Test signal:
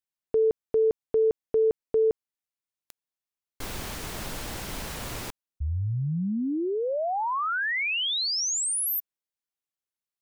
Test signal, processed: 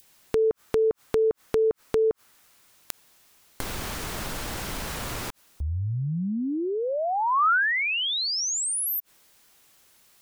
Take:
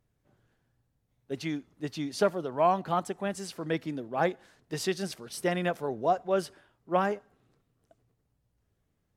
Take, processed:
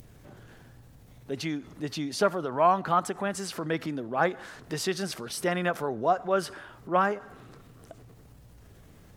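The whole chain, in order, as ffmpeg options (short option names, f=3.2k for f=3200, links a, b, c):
-filter_complex "[0:a]adynamicequalizer=threshold=0.00631:dfrequency=1300:dqfactor=1.6:tfrequency=1300:tqfactor=1.6:attack=5:release=100:ratio=0.375:range=4:mode=boostabove:tftype=bell,asplit=2[a][b];[b]acompressor=mode=upward:threshold=-28dB:ratio=2.5:attack=21:release=40:knee=2.83:detection=peak,volume=0.5dB[c];[a][c]amix=inputs=2:normalize=0,volume=-6.5dB"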